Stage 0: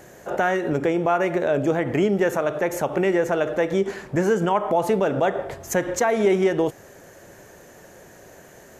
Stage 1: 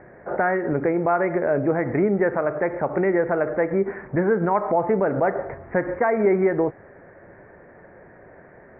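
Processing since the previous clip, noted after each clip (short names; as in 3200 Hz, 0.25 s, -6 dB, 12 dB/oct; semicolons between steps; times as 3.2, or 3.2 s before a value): steep low-pass 2200 Hz 72 dB/oct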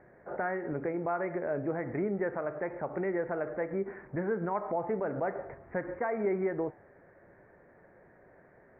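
flange 1.1 Hz, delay 4.5 ms, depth 3.4 ms, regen -90%; gain -7 dB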